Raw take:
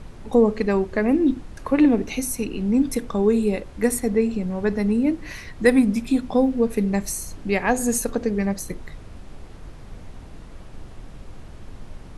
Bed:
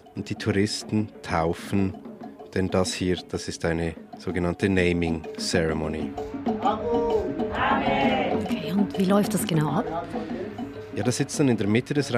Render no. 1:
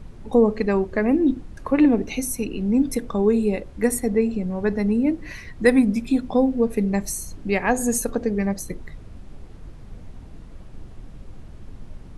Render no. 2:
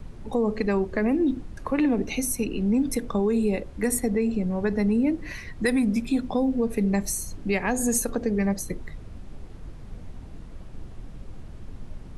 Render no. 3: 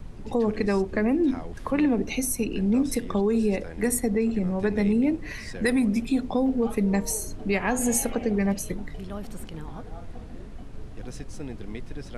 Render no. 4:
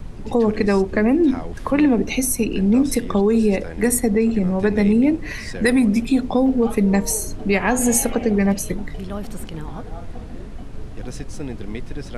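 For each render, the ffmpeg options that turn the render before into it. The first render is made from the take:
-af "afftdn=nr=6:nf=-41"
-filter_complex "[0:a]acrossover=split=700|2200[a][b][c];[a]alimiter=limit=-16.5dB:level=0:latency=1[d];[d][b][c]amix=inputs=3:normalize=0,acrossover=split=370|3000[e][f][g];[f]acompressor=threshold=-27dB:ratio=3[h];[e][h][g]amix=inputs=3:normalize=0"
-filter_complex "[1:a]volume=-16.5dB[a];[0:a][a]amix=inputs=2:normalize=0"
-af "volume=6.5dB"

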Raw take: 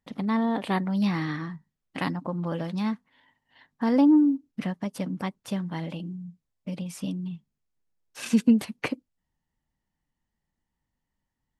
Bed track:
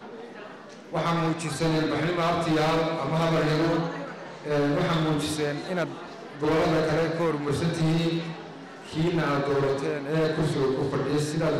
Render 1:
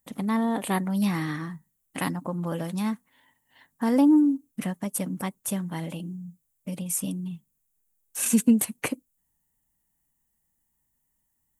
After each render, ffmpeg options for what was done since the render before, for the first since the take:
-af "aexciter=amount=8.6:drive=4.4:freq=6.9k"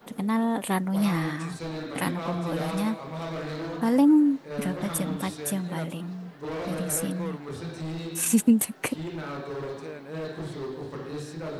-filter_complex "[1:a]volume=-10dB[a];[0:a][a]amix=inputs=2:normalize=0"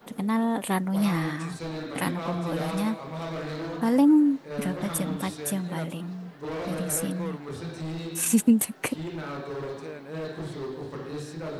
-af anull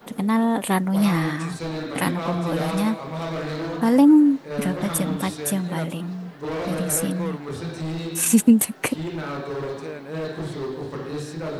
-af "volume=5dB"

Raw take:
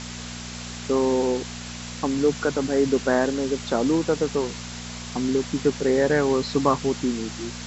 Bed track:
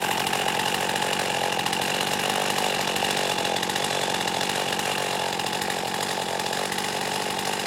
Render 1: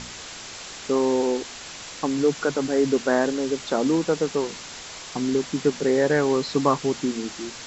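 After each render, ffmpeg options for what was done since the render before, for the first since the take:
-af "bandreject=f=60:t=h:w=4,bandreject=f=120:t=h:w=4,bandreject=f=180:t=h:w=4,bandreject=f=240:t=h:w=4"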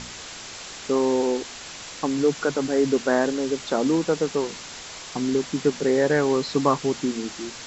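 -af anull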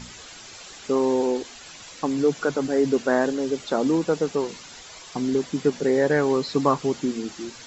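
-af "afftdn=nr=9:nf=-39"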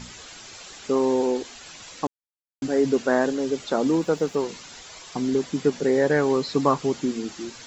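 -filter_complex "[0:a]asettb=1/sr,asplit=3[a][b][c];[a]atrim=end=3.854[d];[b]atrim=start=3.85:end=4.45,asetpts=PTS-STARTPTS,afade=t=in:d=0.004:c=qsin,afade=t=out:st=0.596:d=0.004:c=qsin,aeval=exprs='sgn(val(0))*max(abs(val(0))-0.00178,0)':c=same[e];[c]atrim=start=4.446[f];[d][e]acrossfade=d=0.004:c1=hsin:c2=qsin[g];[g][f]acrossfade=d=0.004:c1=qsin:c2=hsin,asplit=3[h][i][j];[h]atrim=end=2.07,asetpts=PTS-STARTPTS,afade=t=out:st=2.066:d=0.004:c=hsin[k];[i]atrim=start=2.07:end=2.62,asetpts=PTS-STARTPTS,volume=0[l];[j]atrim=start=2.62,asetpts=PTS-STARTPTS,afade=t=in:d=0.004:c=hsin[m];[k][l][m]concat=n=3:v=0:a=1"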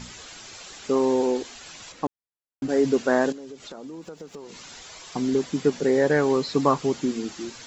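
-filter_complex "[0:a]asettb=1/sr,asplit=3[a][b][c];[a]atrim=end=1.924[d];[b]atrim=start=1.92:end=2.69,asetpts=PTS-STARTPTS,afade=t=in:d=0.004:c=qsin,afade=t=out:st=0.766:d=0.004:c=qsin,highshelf=f=2.7k:g=-10.5[e];[c]atrim=start=2.686[f];[d][e]acrossfade=d=0.004:c1=hsin:c2=qsin[g];[g][f]acrossfade=d=0.004:c1=qsin:c2=hsin,asettb=1/sr,asplit=3[h][i][j];[h]atrim=end=3.324[k];[i]atrim=start=3.32:end=5.1,asetpts=PTS-STARTPTS,afade=t=in:d=0.004:c=qsin,afade=t=out:st=1.776:d=0.004:c=qsin,acompressor=threshold=-38dB:ratio=5:attack=3.2:release=140:knee=1:detection=peak[l];[j]atrim=start=5.096[m];[k][l]acrossfade=d=0.004:c1=hsin:c2=qsin[n];[n][m]acrossfade=d=0.004:c1=qsin:c2=hsin"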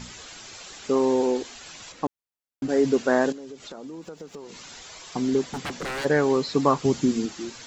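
-filter_complex "[0:a]asplit=3[a][b][c];[a]afade=t=out:st=5.47:d=0.02[d];[b]aeval=exprs='0.0531*(abs(mod(val(0)/0.0531+3,4)-2)-1)':c=same,afade=t=in:st=5.47:d=0.02,afade=t=out:st=6.04:d=0.02[e];[c]afade=t=in:st=6.04:d=0.02[f];[d][e][f]amix=inputs=3:normalize=0,asettb=1/sr,asplit=3[g][h][i];[g]atrim=end=6.854[j];[h]atrim=start=6.85:end=7.26,asetpts=PTS-STARTPTS,afade=t=in:d=0.004:c=qsin,afade=t=out:st=0.406:d=0.004:c=qsin,bass=f=250:g=8,treble=f=4k:g=4[k];[i]atrim=start=7.256[l];[j][k]acrossfade=d=0.004:c1=hsin:c2=qsin[m];[m][l]acrossfade=d=0.004:c1=qsin:c2=hsin"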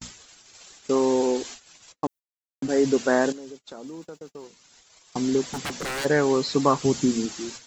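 -af "agate=range=-46dB:threshold=-40dB:ratio=16:detection=peak,highshelf=f=6k:g=10"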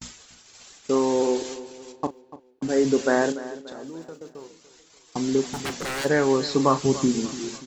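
-filter_complex "[0:a]asplit=2[a][b];[b]adelay=37,volume=-12dB[c];[a][c]amix=inputs=2:normalize=0,asplit=2[d][e];[e]adelay=291,lowpass=f=3.1k:p=1,volume=-15.5dB,asplit=2[f][g];[g]adelay=291,lowpass=f=3.1k:p=1,volume=0.46,asplit=2[h][i];[i]adelay=291,lowpass=f=3.1k:p=1,volume=0.46,asplit=2[j][k];[k]adelay=291,lowpass=f=3.1k:p=1,volume=0.46[l];[d][f][h][j][l]amix=inputs=5:normalize=0"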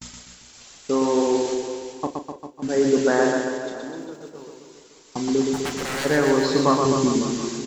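-filter_complex "[0:a]asplit=2[a][b];[b]adelay=34,volume=-11.5dB[c];[a][c]amix=inputs=2:normalize=0,aecho=1:1:120|252|397.2|556.9|732.6:0.631|0.398|0.251|0.158|0.1"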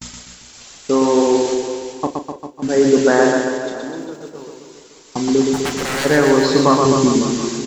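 -af "volume=6dB,alimiter=limit=-1dB:level=0:latency=1"

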